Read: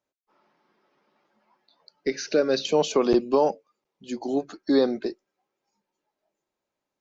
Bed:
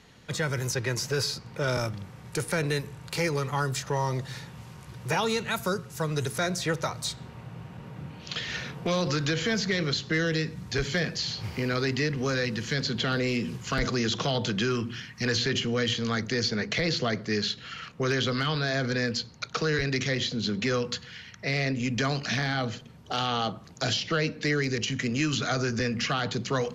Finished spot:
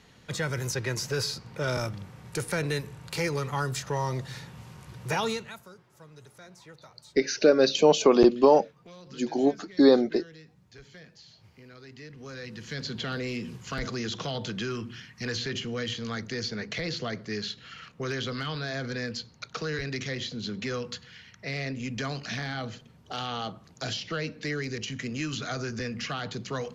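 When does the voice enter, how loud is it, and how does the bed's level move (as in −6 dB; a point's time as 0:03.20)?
5.10 s, +2.5 dB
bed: 0:05.29 −1.5 dB
0:05.69 −22 dB
0:11.79 −22 dB
0:12.86 −5.5 dB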